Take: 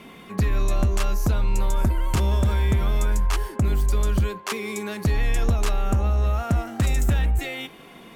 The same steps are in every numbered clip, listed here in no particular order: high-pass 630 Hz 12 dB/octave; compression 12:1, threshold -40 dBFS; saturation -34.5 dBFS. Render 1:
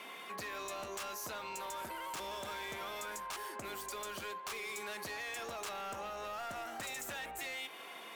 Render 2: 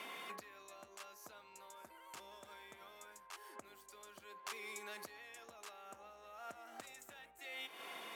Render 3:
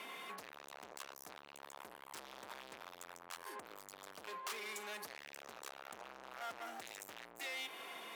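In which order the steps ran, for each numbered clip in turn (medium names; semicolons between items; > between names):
high-pass > saturation > compression; compression > high-pass > saturation; saturation > compression > high-pass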